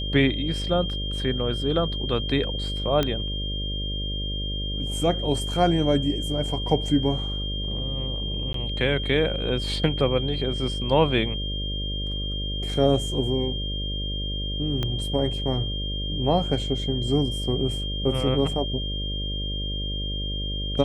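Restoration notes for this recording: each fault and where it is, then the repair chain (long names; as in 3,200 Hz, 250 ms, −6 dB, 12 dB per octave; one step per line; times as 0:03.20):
mains buzz 50 Hz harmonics 12 −30 dBFS
whistle 3,200 Hz −31 dBFS
0:03.03: click −10 dBFS
0:08.53–0:08.54: drop-out 13 ms
0:14.83: click −14 dBFS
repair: click removal
notch filter 3,200 Hz, Q 30
hum removal 50 Hz, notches 12
repair the gap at 0:08.53, 13 ms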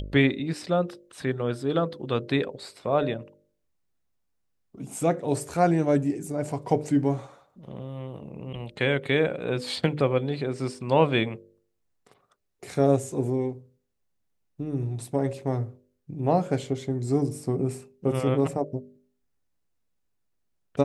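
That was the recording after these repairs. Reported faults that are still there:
0:14.83: click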